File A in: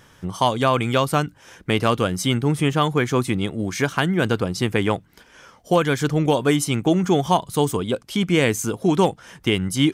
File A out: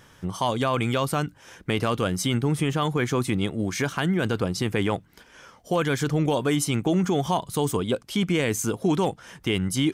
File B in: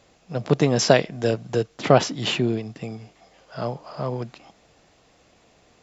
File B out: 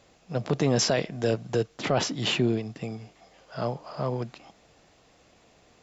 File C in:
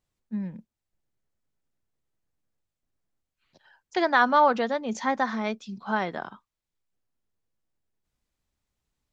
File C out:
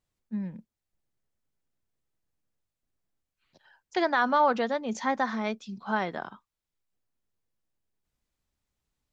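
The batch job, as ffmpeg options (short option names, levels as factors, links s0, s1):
-af "alimiter=limit=0.237:level=0:latency=1:release=14,volume=0.841"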